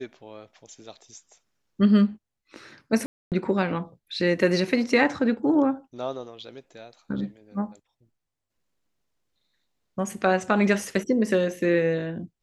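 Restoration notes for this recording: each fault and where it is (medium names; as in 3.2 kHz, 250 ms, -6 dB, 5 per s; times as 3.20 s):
3.06–3.32 s: dropout 258 ms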